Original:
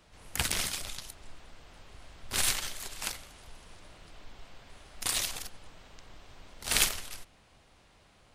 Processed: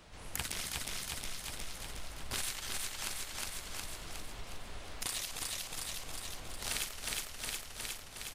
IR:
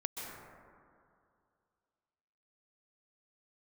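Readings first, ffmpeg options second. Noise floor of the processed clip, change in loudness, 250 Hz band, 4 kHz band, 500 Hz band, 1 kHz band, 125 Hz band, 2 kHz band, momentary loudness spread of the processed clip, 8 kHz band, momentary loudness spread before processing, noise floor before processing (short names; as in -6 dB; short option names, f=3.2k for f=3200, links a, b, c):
-49 dBFS, -8.0 dB, -3.0 dB, -4.5 dB, -2.5 dB, -3.0 dB, -2.5 dB, -4.5 dB, 8 LU, -5.0 dB, 19 LU, -62 dBFS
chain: -af "aecho=1:1:362|724|1086|1448|1810|2172:0.631|0.309|0.151|0.0742|0.0364|0.0178,acompressor=threshold=-41dB:ratio=4,volume=4dB"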